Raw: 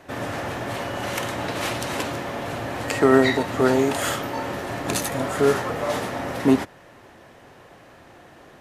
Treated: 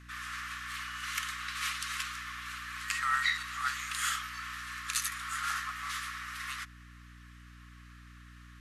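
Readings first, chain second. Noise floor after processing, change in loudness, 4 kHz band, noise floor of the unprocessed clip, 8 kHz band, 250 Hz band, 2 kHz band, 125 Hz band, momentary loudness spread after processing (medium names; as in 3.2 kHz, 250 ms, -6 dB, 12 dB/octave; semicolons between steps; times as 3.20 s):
-53 dBFS, -11.0 dB, -5.0 dB, -49 dBFS, -4.5 dB, -32.5 dB, -5.0 dB, -19.5 dB, 22 LU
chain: Chebyshev high-pass 1.1 kHz, order 8; hum 60 Hz, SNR 15 dB; trim -4.5 dB; MP2 96 kbps 48 kHz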